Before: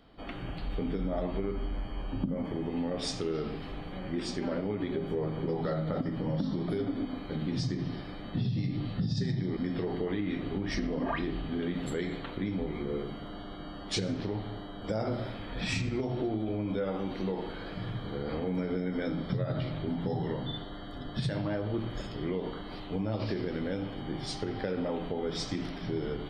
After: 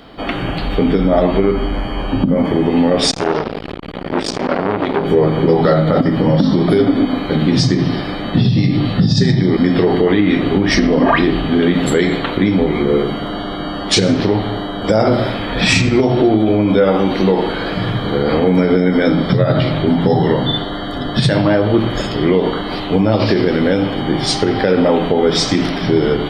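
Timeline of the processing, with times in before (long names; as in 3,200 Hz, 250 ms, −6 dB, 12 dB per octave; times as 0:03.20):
0:03.11–0:05.05: saturating transformer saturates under 1,100 Hz
whole clip: low-shelf EQ 120 Hz −8.5 dB; boost into a limiter +22 dB; level −1 dB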